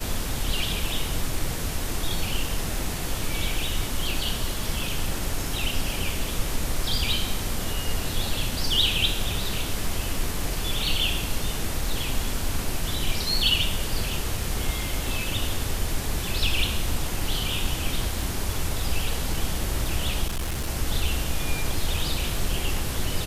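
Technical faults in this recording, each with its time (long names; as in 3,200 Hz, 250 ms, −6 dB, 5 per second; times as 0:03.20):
0:20.27–0:20.70: clipping −24 dBFS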